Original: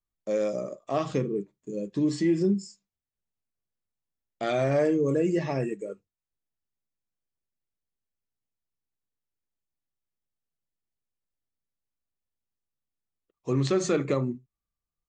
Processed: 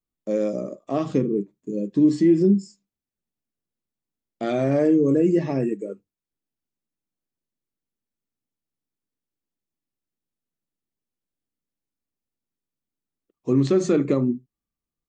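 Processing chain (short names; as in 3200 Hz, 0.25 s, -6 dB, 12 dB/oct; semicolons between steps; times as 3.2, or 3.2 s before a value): bell 260 Hz +11.5 dB 1.6 oct; gain -2 dB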